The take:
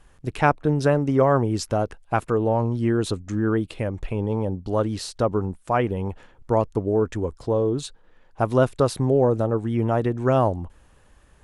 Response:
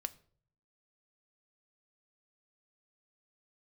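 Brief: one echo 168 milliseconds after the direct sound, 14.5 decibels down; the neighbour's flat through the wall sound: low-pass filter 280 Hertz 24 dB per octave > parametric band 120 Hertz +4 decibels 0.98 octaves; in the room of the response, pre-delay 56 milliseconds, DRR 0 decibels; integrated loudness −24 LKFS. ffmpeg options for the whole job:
-filter_complex "[0:a]aecho=1:1:168:0.188,asplit=2[link_01][link_02];[1:a]atrim=start_sample=2205,adelay=56[link_03];[link_02][link_03]afir=irnorm=-1:irlink=0,volume=1.5dB[link_04];[link_01][link_04]amix=inputs=2:normalize=0,lowpass=frequency=280:width=0.5412,lowpass=frequency=280:width=1.3066,equalizer=frequency=120:width_type=o:width=0.98:gain=4,volume=-1dB"

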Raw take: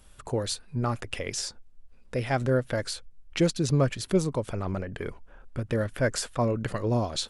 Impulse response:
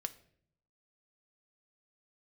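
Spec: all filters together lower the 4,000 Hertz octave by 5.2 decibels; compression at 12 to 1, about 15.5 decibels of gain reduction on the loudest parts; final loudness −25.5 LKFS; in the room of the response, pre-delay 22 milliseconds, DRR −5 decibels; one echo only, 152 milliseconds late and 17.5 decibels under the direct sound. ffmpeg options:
-filter_complex "[0:a]equalizer=frequency=4000:width_type=o:gain=-6.5,acompressor=threshold=-34dB:ratio=12,aecho=1:1:152:0.133,asplit=2[link_01][link_02];[1:a]atrim=start_sample=2205,adelay=22[link_03];[link_02][link_03]afir=irnorm=-1:irlink=0,volume=6.5dB[link_04];[link_01][link_04]amix=inputs=2:normalize=0,volume=8.5dB"

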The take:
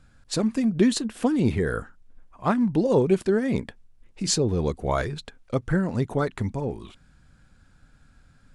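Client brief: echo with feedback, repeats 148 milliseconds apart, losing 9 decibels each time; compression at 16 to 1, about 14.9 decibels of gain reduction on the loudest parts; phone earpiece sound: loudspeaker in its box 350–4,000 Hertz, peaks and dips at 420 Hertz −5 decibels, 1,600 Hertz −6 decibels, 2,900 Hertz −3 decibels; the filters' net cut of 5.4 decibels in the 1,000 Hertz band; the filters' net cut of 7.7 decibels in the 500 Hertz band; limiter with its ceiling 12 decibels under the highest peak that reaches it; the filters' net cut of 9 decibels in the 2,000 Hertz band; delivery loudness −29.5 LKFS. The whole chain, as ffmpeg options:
ffmpeg -i in.wav -af "equalizer=frequency=500:width_type=o:gain=-3.5,equalizer=frequency=1000:width_type=o:gain=-3.5,equalizer=frequency=2000:width_type=o:gain=-5,acompressor=threshold=-31dB:ratio=16,alimiter=level_in=9.5dB:limit=-24dB:level=0:latency=1,volume=-9.5dB,highpass=350,equalizer=frequency=420:width_type=q:width=4:gain=-5,equalizer=frequency=1600:width_type=q:width=4:gain=-6,equalizer=frequency=2900:width_type=q:width=4:gain=-3,lowpass=frequency=4000:width=0.5412,lowpass=frequency=4000:width=1.3066,aecho=1:1:148|296|444|592:0.355|0.124|0.0435|0.0152,volume=20dB" out.wav

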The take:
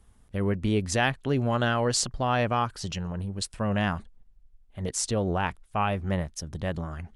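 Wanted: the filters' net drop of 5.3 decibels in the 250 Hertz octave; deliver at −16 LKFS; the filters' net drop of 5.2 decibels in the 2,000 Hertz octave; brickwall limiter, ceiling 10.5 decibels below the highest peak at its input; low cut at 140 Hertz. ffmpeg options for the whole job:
ffmpeg -i in.wav -af "highpass=140,equalizer=frequency=250:width_type=o:gain=-6,equalizer=frequency=2000:width_type=o:gain=-7,volume=17.5dB,alimiter=limit=-3dB:level=0:latency=1" out.wav

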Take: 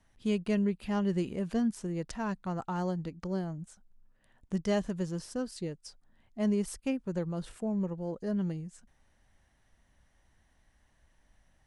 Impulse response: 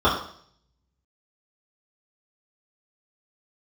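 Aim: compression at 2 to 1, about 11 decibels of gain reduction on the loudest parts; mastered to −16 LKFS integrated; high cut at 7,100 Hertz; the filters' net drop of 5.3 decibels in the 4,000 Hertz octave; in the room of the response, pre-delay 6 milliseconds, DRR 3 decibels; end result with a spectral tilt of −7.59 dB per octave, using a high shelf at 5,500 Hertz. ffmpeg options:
-filter_complex "[0:a]lowpass=7100,equalizer=frequency=4000:width_type=o:gain=-4.5,highshelf=frequency=5500:gain=-7,acompressor=threshold=-46dB:ratio=2,asplit=2[link_01][link_02];[1:a]atrim=start_sample=2205,adelay=6[link_03];[link_02][link_03]afir=irnorm=-1:irlink=0,volume=-23.5dB[link_04];[link_01][link_04]amix=inputs=2:normalize=0,volume=23.5dB"

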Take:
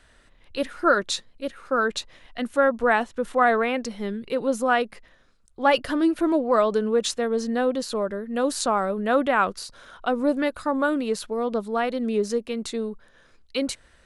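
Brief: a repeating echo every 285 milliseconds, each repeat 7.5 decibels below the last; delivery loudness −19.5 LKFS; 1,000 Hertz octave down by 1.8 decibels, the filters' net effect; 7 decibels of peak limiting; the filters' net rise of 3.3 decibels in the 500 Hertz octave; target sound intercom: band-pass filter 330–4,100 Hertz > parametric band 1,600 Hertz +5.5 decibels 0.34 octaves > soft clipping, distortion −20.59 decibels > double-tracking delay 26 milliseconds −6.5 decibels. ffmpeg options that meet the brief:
ffmpeg -i in.wav -filter_complex "[0:a]equalizer=frequency=500:width_type=o:gain=6,equalizer=frequency=1000:width_type=o:gain=-6,alimiter=limit=-12.5dB:level=0:latency=1,highpass=330,lowpass=4100,equalizer=frequency=1600:width_type=o:width=0.34:gain=5.5,aecho=1:1:285|570|855|1140|1425:0.422|0.177|0.0744|0.0312|0.0131,asoftclip=threshold=-13.5dB,asplit=2[link_01][link_02];[link_02]adelay=26,volume=-6.5dB[link_03];[link_01][link_03]amix=inputs=2:normalize=0,volume=5dB" out.wav

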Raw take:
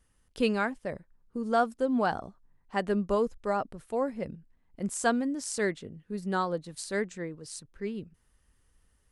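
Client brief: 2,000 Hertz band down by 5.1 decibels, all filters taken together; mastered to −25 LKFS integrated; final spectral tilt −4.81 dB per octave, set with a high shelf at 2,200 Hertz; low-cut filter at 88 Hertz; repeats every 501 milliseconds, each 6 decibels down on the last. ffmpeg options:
ffmpeg -i in.wav -af "highpass=88,equalizer=frequency=2000:width_type=o:gain=-5.5,highshelf=frequency=2200:gain=-3,aecho=1:1:501|1002|1503|2004|2505|3006:0.501|0.251|0.125|0.0626|0.0313|0.0157,volume=6.5dB" out.wav

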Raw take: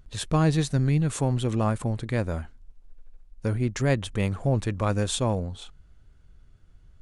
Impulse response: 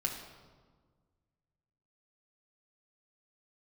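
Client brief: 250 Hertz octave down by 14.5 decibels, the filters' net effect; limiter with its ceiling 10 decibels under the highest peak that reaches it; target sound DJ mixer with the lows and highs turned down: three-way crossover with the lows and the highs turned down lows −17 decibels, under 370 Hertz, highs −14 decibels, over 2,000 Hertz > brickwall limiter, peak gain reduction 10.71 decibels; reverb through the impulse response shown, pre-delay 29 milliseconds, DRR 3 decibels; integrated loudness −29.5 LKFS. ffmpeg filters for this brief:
-filter_complex "[0:a]equalizer=frequency=250:width_type=o:gain=-5.5,alimiter=limit=-21dB:level=0:latency=1,asplit=2[link_01][link_02];[1:a]atrim=start_sample=2205,adelay=29[link_03];[link_02][link_03]afir=irnorm=-1:irlink=0,volume=-6.5dB[link_04];[link_01][link_04]amix=inputs=2:normalize=0,acrossover=split=370 2000:gain=0.141 1 0.2[link_05][link_06][link_07];[link_05][link_06][link_07]amix=inputs=3:normalize=0,volume=11dB,alimiter=limit=-18dB:level=0:latency=1"

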